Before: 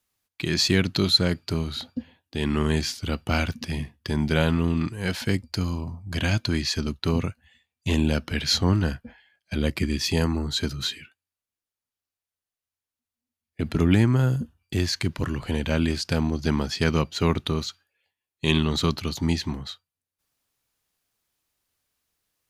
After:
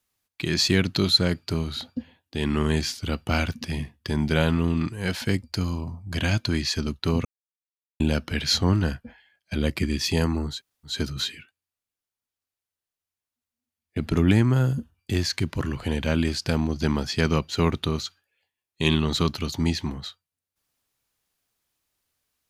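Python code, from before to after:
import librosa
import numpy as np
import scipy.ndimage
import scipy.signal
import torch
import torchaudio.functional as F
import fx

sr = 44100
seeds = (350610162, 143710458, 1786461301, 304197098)

y = fx.edit(x, sr, fx.silence(start_s=7.25, length_s=0.75),
    fx.insert_room_tone(at_s=10.54, length_s=0.37, crossfade_s=0.16), tone=tone)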